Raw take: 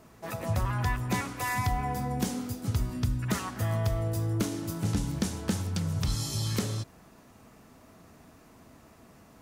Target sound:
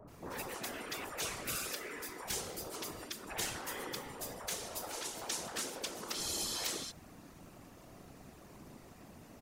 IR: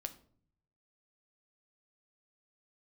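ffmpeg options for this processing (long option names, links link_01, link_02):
-filter_complex "[0:a]afftfilt=real='re*lt(hypot(re,im),0.0501)':imag='im*lt(hypot(re,im),0.0501)':win_size=1024:overlap=0.75,acrossover=split=1300[link_01][link_02];[link_02]adelay=80[link_03];[link_01][link_03]amix=inputs=2:normalize=0,afftfilt=real='hypot(re,im)*cos(2*PI*random(0))':imag='hypot(re,im)*sin(2*PI*random(1))':win_size=512:overlap=0.75,volume=6.5dB"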